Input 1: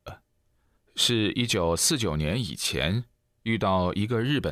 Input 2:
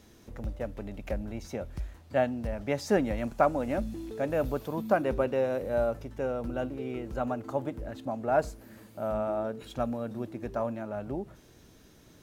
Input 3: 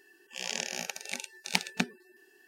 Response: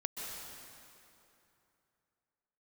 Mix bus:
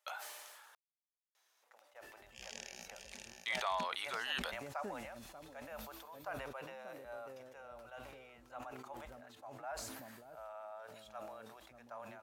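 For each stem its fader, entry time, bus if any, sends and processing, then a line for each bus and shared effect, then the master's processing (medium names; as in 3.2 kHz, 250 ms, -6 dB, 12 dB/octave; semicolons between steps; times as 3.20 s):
0.0 dB, 0.00 s, muted 0.75–3.34 s, bus A, no send, no echo send, none
-12.5 dB, 1.35 s, bus A, no send, echo send -19.5 dB, none
-13.0 dB, 2.00 s, no bus, no send, echo send -11.5 dB, auto duck -6 dB, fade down 2.00 s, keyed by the first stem
bus A: 0.0 dB, high-pass 760 Hz 24 dB/octave; compression 2:1, threshold -41 dBFS, peak gain reduction 9.5 dB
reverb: none
echo: delay 587 ms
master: decay stretcher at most 30 dB/s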